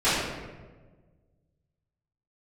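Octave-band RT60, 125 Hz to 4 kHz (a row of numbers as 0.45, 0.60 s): 2.1, 1.7, 1.6, 1.2, 1.0, 0.75 s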